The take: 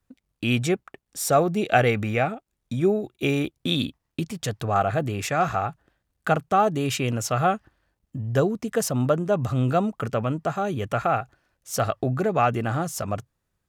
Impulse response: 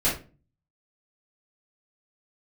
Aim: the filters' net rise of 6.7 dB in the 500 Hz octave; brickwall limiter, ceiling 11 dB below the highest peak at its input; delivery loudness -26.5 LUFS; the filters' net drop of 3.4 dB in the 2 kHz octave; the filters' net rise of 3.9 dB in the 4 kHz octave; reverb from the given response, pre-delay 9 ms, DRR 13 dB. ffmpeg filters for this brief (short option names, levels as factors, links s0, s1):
-filter_complex "[0:a]equalizer=f=500:t=o:g=9,equalizer=f=2000:t=o:g=-8,equalizer=f=4000:t=o:g=7.5,alimiter=limit=0.2:level=0:latency=1,asplit=2[s0][s1];[1:a]atrim=start_sample=2205,adelay=9[s2];[s1][s2]afir=irnorm=-1:irlink=0,volume=0.0531[s3];[s0][s3]amix=inputs=2:normalize=0,volume=0.794"